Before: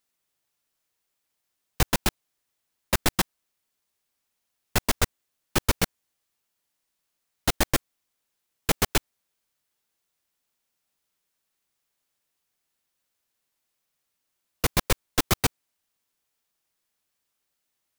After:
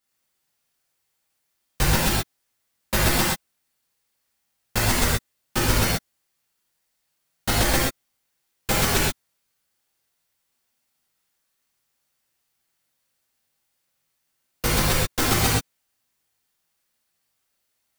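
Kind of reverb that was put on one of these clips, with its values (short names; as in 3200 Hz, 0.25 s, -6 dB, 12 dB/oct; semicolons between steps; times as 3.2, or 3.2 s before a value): non-linear reverb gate 0.15 s flat, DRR -7.5 dB; gain -3.5 dB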